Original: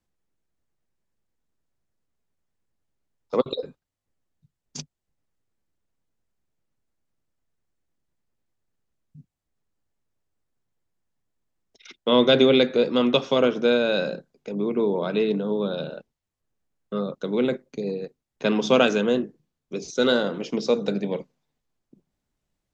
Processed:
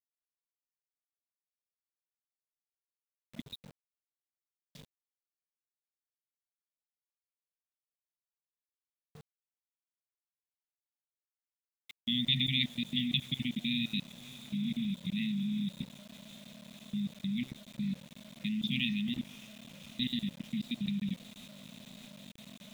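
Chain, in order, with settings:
linear-phase brick-wall band-stop 240–1,800 Hz
high-frequency loss of the air 470 metres
feedback delay with all-pass diffusion 566 ms, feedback 78%, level −13.5 dB
output level in coarse steps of 17 dB
parametric band 3,600 Hz +11 dB 0.33 octaves
centre clipping without the shift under −49.5 dBFS
level +1 dB

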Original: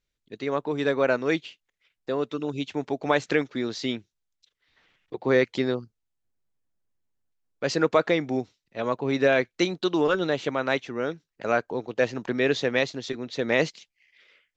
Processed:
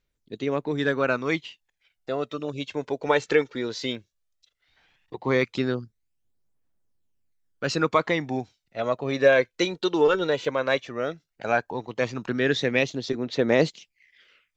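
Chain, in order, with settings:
phase shifter 0.15 Hz, delay 2.3 ms, feedback 46%

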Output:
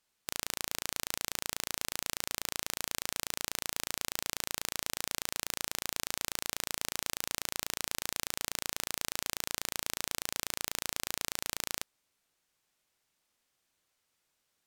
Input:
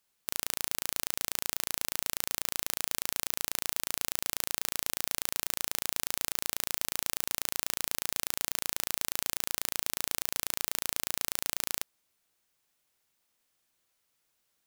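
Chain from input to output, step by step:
bad sample-rate conversion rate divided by 2×, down filtered, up hold

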